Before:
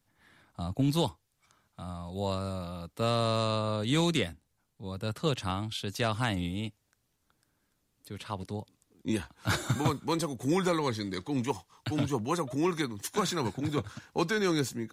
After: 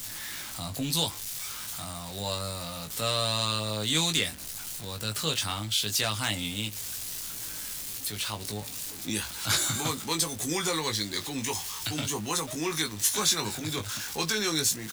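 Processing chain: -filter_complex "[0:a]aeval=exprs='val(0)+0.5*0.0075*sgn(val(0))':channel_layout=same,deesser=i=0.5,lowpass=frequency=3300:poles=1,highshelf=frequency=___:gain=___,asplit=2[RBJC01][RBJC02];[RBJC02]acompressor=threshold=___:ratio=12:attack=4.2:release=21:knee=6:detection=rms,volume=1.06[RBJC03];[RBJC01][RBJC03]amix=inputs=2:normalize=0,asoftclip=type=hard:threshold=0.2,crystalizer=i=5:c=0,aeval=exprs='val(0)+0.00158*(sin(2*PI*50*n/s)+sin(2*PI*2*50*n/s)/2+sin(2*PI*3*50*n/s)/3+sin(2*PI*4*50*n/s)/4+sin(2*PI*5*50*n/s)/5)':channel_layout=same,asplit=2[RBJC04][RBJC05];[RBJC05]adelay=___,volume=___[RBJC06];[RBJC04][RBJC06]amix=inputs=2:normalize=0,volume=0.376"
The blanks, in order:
2300, 9.5, 0.0158, 19, 0.531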